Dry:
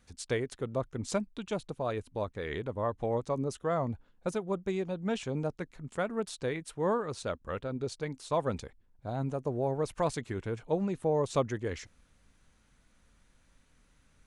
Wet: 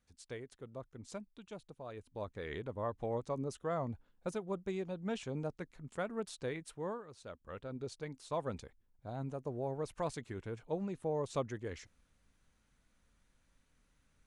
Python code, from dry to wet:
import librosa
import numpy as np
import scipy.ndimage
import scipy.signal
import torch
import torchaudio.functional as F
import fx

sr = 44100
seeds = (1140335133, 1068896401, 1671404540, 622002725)

y = fx.gain(x, sr, db=fx.line((1.89, -14.0), (2.32, -6.0), (6.71, -6.0), (7.09, -17.0), (7.72, -7.5)))